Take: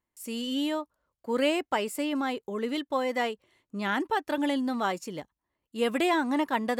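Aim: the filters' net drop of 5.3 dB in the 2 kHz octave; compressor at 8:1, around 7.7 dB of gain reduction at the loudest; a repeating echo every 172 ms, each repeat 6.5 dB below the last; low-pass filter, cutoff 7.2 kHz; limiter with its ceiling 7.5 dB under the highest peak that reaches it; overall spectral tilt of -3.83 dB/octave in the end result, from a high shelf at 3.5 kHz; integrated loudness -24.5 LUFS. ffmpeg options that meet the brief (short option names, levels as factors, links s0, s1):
-af "lowpass=7200,equalizer=f=2000:t=o:g=-5,highshelf=f=3500:g=-6,acompressor=threshold=0.0316:ratio=8,alimiter=level_in=1.58:limit=0.0631:level=0:latency=1,volume=0.631,aecho=1:1:172|344|516|688|860|1032:0.473|0.222|0.105|0.0491|0.0231|0.0109,volume=3.76"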